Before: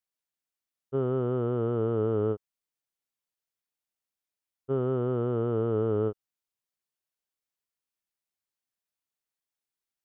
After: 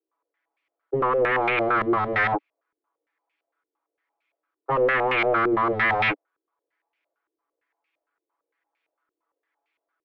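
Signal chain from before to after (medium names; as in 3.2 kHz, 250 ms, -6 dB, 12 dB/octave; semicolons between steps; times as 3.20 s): comb filter that takes the minimum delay 6.1 ms; steep high-pass 290 Hz 72 dB/octave; distance through air 76 m; comb 7 ms, depth 49%; sine folder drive 16 dB, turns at -18.5 dBFS; step-sequenced low-pass 8.8 Hz 380–2400 Hz; trim -4.5 dB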